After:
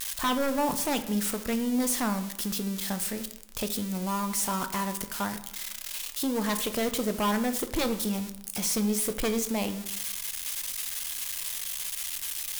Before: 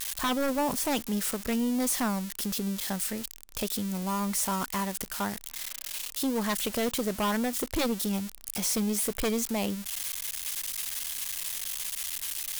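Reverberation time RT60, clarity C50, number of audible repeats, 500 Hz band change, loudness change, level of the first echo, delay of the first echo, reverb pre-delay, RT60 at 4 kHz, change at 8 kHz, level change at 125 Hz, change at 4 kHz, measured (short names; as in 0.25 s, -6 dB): 0.85 s, 12.0 dB, none, +1.0 dB, +0.5 dB, none, none, 5 ms, 0.55 s, +0.5 dB, +0.5 dB, +0.5 dB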